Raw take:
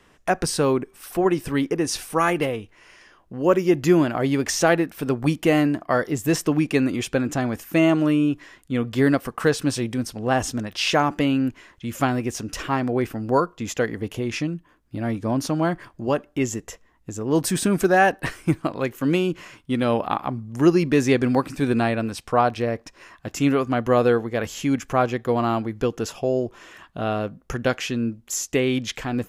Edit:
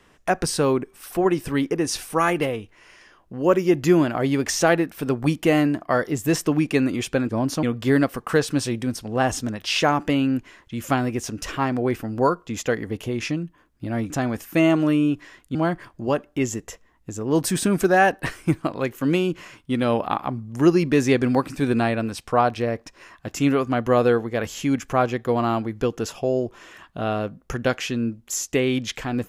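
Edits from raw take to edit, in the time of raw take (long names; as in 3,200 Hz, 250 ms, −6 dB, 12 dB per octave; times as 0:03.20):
0:07.29–0:08.74: swap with 0:15.21–0:15.55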